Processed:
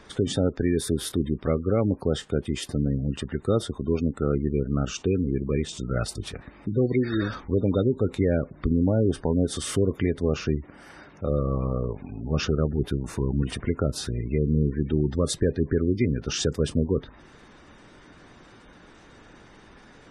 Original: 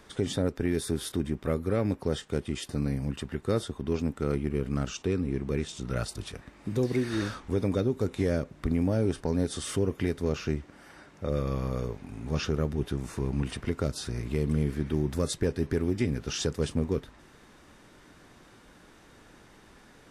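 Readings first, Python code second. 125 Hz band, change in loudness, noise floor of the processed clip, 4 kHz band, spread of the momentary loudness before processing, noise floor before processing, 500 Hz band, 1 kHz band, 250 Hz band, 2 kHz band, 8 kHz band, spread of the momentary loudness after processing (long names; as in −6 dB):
+4.5 dB, +4.5 dB, −51 dBFS, +4.0 dB, 6 LU, −56 dBFS, +4.5 dB, +2.5 dB, +4.5 dB, +2.0 dB, +4.0 dB, 6 LU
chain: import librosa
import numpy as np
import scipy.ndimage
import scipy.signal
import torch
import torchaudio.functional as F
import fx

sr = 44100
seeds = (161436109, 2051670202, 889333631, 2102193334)

y = fx.spec_gate(x, sr, threshold_db=-25, keep='strong')
y = y * 10.0 ** (4.5 / 20.0)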